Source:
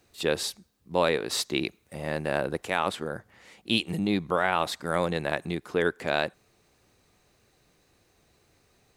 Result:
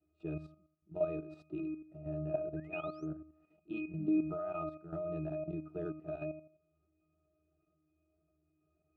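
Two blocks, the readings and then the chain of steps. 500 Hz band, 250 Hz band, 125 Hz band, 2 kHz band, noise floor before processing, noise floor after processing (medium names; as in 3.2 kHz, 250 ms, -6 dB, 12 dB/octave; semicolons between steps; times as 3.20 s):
-10.5 dB, -6.0 dB, -7.5 dB, -21.5 dB, -67 dBFS, -79 dBFS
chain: block-companded coder 5-bit; peaking EQ 440 Hz +11.5 dB 2.1 oct; painted sound rise, 2.56–3.06 s, 1.5–6.6 kHz -24 dBFS; pitch-class resonator D#, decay 0.48 s; level held to a coarse grid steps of 10 dB; trim +2 dB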